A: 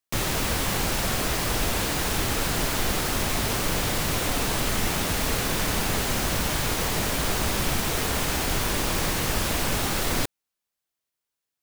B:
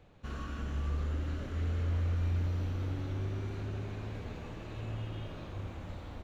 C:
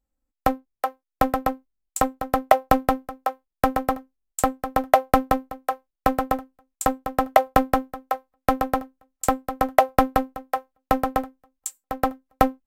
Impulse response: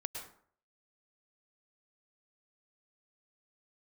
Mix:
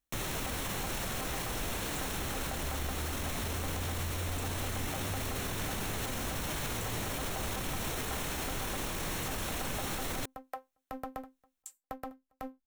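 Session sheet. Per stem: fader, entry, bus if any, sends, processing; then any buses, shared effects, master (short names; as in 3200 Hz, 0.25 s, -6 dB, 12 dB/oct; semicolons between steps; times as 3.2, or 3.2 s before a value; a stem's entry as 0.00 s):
-3.5 dB, 0.00 s, no send, notch 4800 Hz, Q 6.9
+2.0 dB, 1.90 s, no send, dry
-11.0 dB, 0.00 s, no send, compressor 2:1, threshold -24 dBFS, peak gain reduction 8.5 dB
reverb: off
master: limiter -26.5 dBFS, peak gain reduction 12.5 dB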